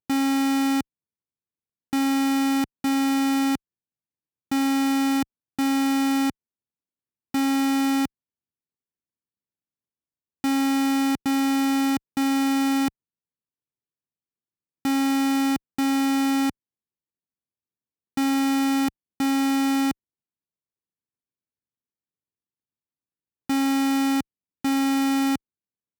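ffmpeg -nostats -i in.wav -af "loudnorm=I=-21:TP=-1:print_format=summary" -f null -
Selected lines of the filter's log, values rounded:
Input Integrated:    -23.5 LUFS
Input True Peak:     -15.3 dBTP
Input LRA:             4.2 LU
Input Threshold:     -33.7 LUFS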